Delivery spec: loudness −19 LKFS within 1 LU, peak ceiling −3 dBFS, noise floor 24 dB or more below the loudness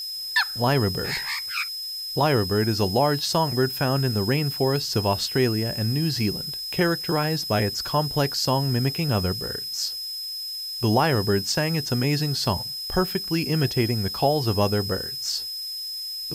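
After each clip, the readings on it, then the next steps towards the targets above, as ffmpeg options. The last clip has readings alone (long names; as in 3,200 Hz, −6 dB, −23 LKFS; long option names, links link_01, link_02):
interfering tone 5,100 Hz; level of the tone −30 dBFS; background noise floor −33 dBFS; target noise floor −48 dBFS; integrated loudness −24.0 LKFS; sample peak −8.5 dBFS; target loudness −19.0 LKFS
→ -af "bandreject=frequency=5100:width=30"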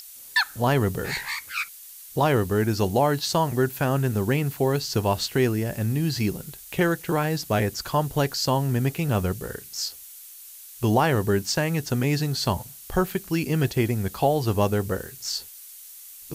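interfering tone none found; background noise floor −44 dBFS; target noise floor −49 dBFS
→ -af "afftdn=noise_reduction=6:noise_floor=-44"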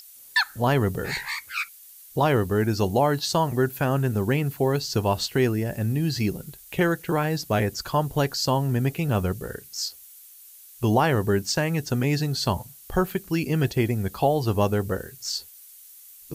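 background noise floor −48 dBFS; target noise floor −49 dBFS
→ -af "afftdn=noise_reduction=6:noise_floor=-48"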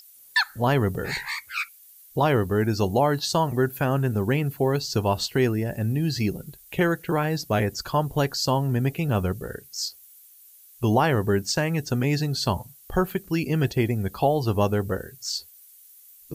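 background noise floor −51 dBFS; integrated loudness −25.0 LKFS; sample peak −9.5 dBFS; target loudness −19.0 LKFS
→ -af "volume=6dB"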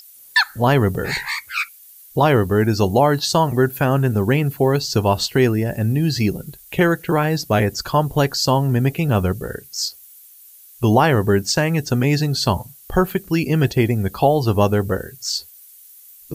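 integrated loudness −19.0 LKFS; sample peak −3.5 dBFS; background noise floor −45 dBFS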